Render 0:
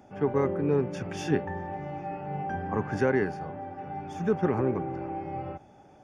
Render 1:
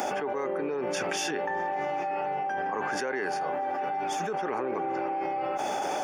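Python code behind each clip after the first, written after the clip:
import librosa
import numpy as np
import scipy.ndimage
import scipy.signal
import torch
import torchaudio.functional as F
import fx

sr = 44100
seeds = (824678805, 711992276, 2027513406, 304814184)

y = scipy.signal.sosfilt(scipy.signal.butter(2, 500.0, 'highpass', fs=sr, output='sos'), x)
y = fx.high_shelf(y, sr, hz=4600.0, db=8.0)
y = fx.env_flatten(y, sr, amount_pct=100)
y = y * librosa.db_to_amplitude(-4.5)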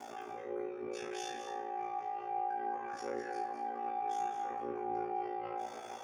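y = fx.comb_fb(x, sr, f0_hz=130.0, decay_s=0.44, harmonics='all', damping=0.0, mix_pct=100)
y = y * np.sin(2.0 * np.pi * 28.0 * np.arange(len(y)) / sr)
y = y + 10.0 ** (-8.5 / 20.0) * np.pad(y, (int(209 * sr / 1000.0), 0))[:len(y)]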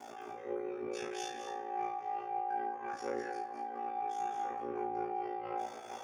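y = fx.am_noise(x, sr, seeds[0], hz=5.7, depth_pct=60)
y = y * librosa.db_to_amplitude(3.5)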